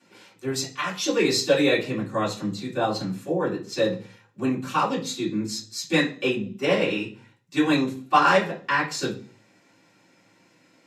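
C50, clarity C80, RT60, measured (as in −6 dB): 10.5 dB, 17.0 dB, 0.40 s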